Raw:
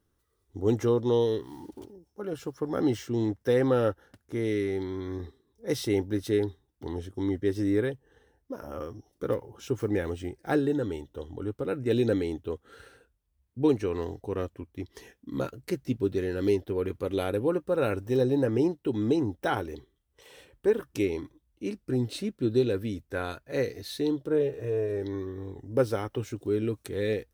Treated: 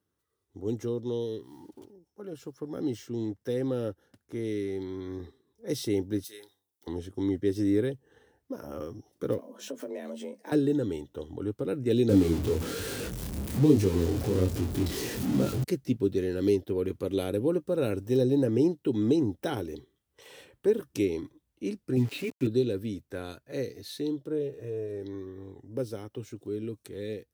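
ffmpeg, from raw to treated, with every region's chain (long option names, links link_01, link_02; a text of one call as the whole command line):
ffmpeg -i in.wav -filter_complex "[0:a]asettb=1/sr,asplit=3[link_01][link_02][link_03];[link_01]atrim=end=6.244[link_04];[link_02]atrim=start=6.24:end=6.87,asetpts=PTS-STARTPTS,afade=type=in:duration=0.004:curve=qsin,afade=type=out:start_time=0.626:duration=0.004:curve=qsin,aderivative,asplit=2[link_05][link_06];[link_06]adelay=31,volume=-12.5dB[link_07];[link_05][link_07]amix=inputs=2:normalize=0,atrim=end_sample=27783,bandreject=frequency=48.59:width_type=h:width=4,bandreject=frequency=97.18:width_type=h:width=4,bandreject=frequency=145.77:width_type=h:width=4,bandreject=frequency=194.36:width_type=h:width=4,bandreject=frequency=242.95:width_type=h:width=4,bandreject=frequency=291.54:width_type=h:width=4,bandreject=frequency=340.13:width_type=h:width=4,bandreject=frequency=388.72:width_type=h:width=4,bandreject=frequency=437.31:width_type=h:width=4,bandreject=frequency=485.9:width_type=h:width=4,bandreject=frequency=534.49:width_type=h:width=4,bandreject=frequency=583.08:width_type=h:width=4,bandreject=frequency=631.67:width_type=h:width=4,bandreject=frequency=680.26:width_type=h:width=4,bandreject=frequency=728.85:width_type=h:width=4,bandreject=frequency=777.44:width_type=h:width=4,bandreject=frequency=826.03:width_type=h:width=4,bandreject=frequency=874.62:width_type=h:width=4,bandreject=frequency=923.21:width_type=h:width=4,bandreject=frequency=971.8:width_type=h:width=4,bandreject=frequency=1020.39:width_type=h:width=4,bandreject=frequency=1068.98:width_type=h:width=4,bandreject=frequency=1117.57:width_type=h:width=4,bandreject=frequency=1166.16:width_type=h:width=4,bandreject=frequency=1214.75:width_type=h:width=4,bandreject=frequency=1263.34:width_type=h:width=4,bandreject=frequency=1311.93:width_type=h:width=4[link_08];[link_03]atrim=start=6.866[link_09];[link_04][link_08]acrossfade=duration=0.004:curve1=hsin:curve2=qsin[link_10];[link_10][link_09]acrossfade=duration=0.004:curve1=qsin:curve2=hsin,asettb=1/sr,asplit=3[link_11][link_12][link_13];[link_11]atrim=end=9.384[link_14];[link_12]atrim=start=9.38:end=10.52,asetpts=PTS-STARTPTS,afade=type=in:duration=0.004:curve=qsin,afade=type=out:start_time=1.136:duration=0.004:curve=qsin,acompressor=threshold=-38dB:ratio=2.5:attack=3.2:release=140:knee=1:detection=peak,afreqshift=140,asplit=2[link_15][link_16];[link_16]adelay=14,volume=-8dB[link_17];[link_15][link_17]amix=inputs=2:normalize=0,atrim=end_sample=50274[link_18];[link_13]atrim=start=10.516[link_19];[link_14][link_18]acrossfade=duration=0.004:curve1=hsin:curve2=qsin[link_20];[link_20][link_19]acrossfade=duration=0.004:curve1=qsin:curve2=hsin,asettb=1/sr,asplit=3[link_21][link_22][link_23];[link_21]atrim=end=12.094[link_24];[link_22]atrim=start=12.09:end=15.64,asetpts=PTS-STARTPTS,afade=type=in:duration=0.004:curve=qsin,afade=type=out:start_time=3.546:duration=0.004:curve=qsin,aeval=exprs='val(0)+0.5*0.0422*sgn(val(0))':channel_layout=same,lowshelf=frequency=350:gain=8,flanger=delay=20:depth=6:speed=1.2[link_25];[link_23]atrim=start=15.636[link_26];[link_24][link_25]acrossfade=duration=0.004:curve1=hsin:curve2=qsin[link_27];[link_27][link_26]acrossfade=duration=0.004:curve1=qsin:curve2=hsin,asettb=1/sr,asplit=3[link_28][link_29][link_30];[link_28]atrim=end=21.964[link_31];[link_29]atrim=start=21.96:end=22.47,asetpts=PTS-STARTPTS,afade=type=in:duration=0.004:curve=qsin,afade=type=out:start_time=0.506:duration=0.004:curve=qsin,lowpass=frequency=2400:width_type=q:width=4.7,aecho=1:1:7.2:0.78,atrim=end_sample=22491,aeval=exprs='val(0)*gte(abs(val(0)),0.0106)':channel_layout=same[link_32];[link_30]atrim=start=22.466[link_33];[link_31][link_32]acrossfade=duration=0.004:curve1=hsin:curve2=qsin[link_34];[link_34][link_33]acrossfade=duration=0.004:curve1=qsin:curve2=hsin,acrossover=split=500|3000[link_35][link_36][link_37];[link_36]acompressor=threshold=-51dB:ratio=2[link_38];[link_35][link_38][link_37]amix=inputs=3:normalize=0,highpass=100,dynaudnorm=framelen=680:gausssize=17:maxgain=8dB,volume=-5dB" out.wav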